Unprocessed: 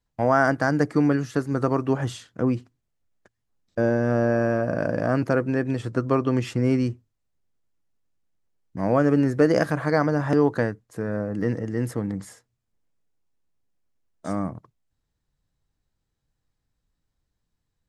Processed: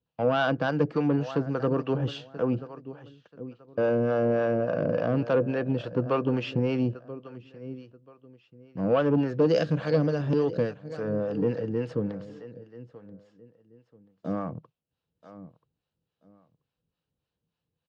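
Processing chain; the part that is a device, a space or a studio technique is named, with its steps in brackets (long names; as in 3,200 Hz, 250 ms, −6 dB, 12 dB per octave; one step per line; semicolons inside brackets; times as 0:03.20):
0:09.39–0:11.01: octave-band graphic EQ 1,000/4,000/8,000 Hz −10/+4/+10 dB
repeating echo 983 ms, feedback 24%, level −17 dB
guitar amplifier with harmonic tremolo (two-band tremolo in antiphase 3.5 Hz, depth 70%, crossover 530 Hz; soft clipping −18.5 dBFS, distortion −14 dB; loudspeaker in its box 93–4,500 Hz, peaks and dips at 160 Hz +6 dB, 490 Hz +8 dB, 2,000 Hz −8 dB, 2,800 Hz +8 dB)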